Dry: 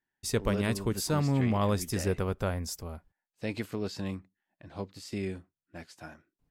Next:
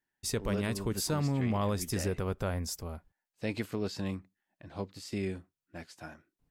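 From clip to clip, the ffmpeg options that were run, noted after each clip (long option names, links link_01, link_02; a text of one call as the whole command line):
ffmpeg -i in.wav -af "alimiter=limit=-21dB:level=0:latency=1:release=90" out.wav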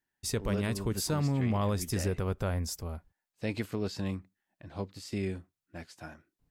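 ffmpeg -i in.wav -af "equalizer=frequency=73:width_type=o:width=1.8:gain=3.5" out.wav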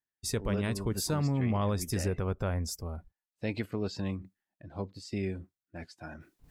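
ffmpeg -i in.wav -af "afftdn=noise_reduction=13:noise_floor=-52,areverse,acompressor=mode=upward:threshold=-39dB:ratio=2.5,areverse" out.wav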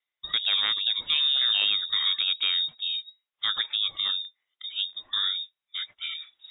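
ffmpeg -i in.wav -filter_complex "[0:a]lowpass=frequency=3200:width_type=q:width=0.5098,lowpass=frequency=3200:width_type=q:width=0.6013,lowpass=frequency=3200:width_type=q:width=0.9,lowpass=frequency=3200:width_type=q:width=2.563,afreqshift=-3800,acrossover=split=3000[link_01][link_02];[link_02]acompressor=threshold=-41dB:ratio=4:attack=1:release=60[link_03];[link_01][link_03]amix=inputs=2:normalize=0,crystalizer=i=1:c=0,volume=8.5dB" out.wav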